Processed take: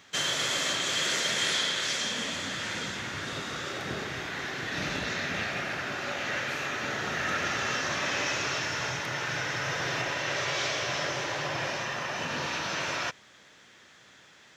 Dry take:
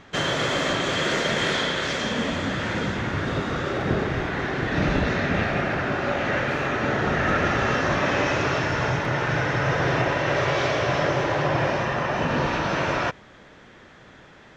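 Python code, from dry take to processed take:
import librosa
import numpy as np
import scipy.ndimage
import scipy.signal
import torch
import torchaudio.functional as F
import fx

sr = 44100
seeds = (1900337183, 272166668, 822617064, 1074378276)

y = scipy.signal.sosfilt(scipy.signal.butter(2, 82.0, 'highpass', fs=sr, output='sos'), x)
y = F.preemphasis(torch.from_numpy(y), 0.9).numpy()
y = y * librosa.db_to_amplitude(6.5)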